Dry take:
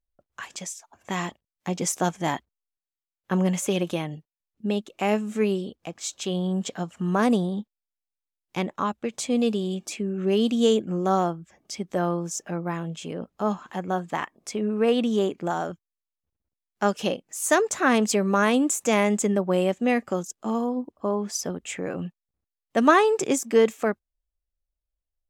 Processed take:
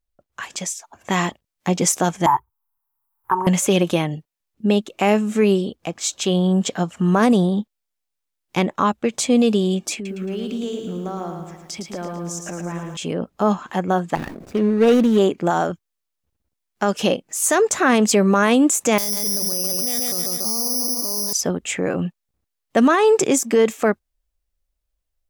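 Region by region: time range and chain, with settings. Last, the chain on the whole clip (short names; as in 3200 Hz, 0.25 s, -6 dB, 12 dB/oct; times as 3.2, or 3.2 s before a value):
2.26–3.47 EQ curve 130 Hz 0 dB, 200 Hz -27 dB, 390 Hz -5 dB, 610 Hz -25 dB, 900 Hz +12 dB, 1900 Hz -12 dB, 3900 Hz -28 dB, 6300 Hz -20 dB, 13000 Hz +6 dB + three-band squash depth 40%
9.94–12.97 compressor 4:1, threshold -37 dBFS + lo-fi delay 0.111 s, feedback 55%, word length 11-bit, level -5.5 dB
14.15–15.18 median filter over 41 samples + sustainer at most 57 dB/s
18.98–21.33 darkening echo 0.142 s, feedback 43%, low-pass 4700 Hz, level -8.5 dB + careless resampling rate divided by 8×, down filtered, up zero stuff
whole clip: limiter -16 dBFS; AGC gain up to 4.5 dB; gain +4 dB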